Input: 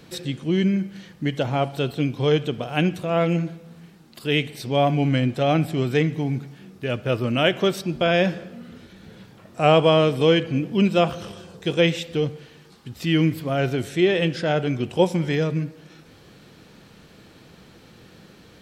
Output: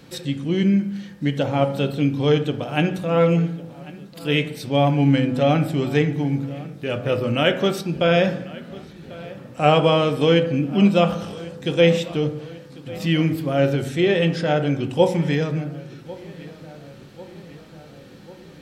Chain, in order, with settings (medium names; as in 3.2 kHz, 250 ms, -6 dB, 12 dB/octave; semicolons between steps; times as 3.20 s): filtered feedback delay 1095 ms, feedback 63%, low-pass 3.5 kHz, level -19.5 dB; on a send at -6.5 dB: reverberation RT60 0.65 s, pre-delay 3 ms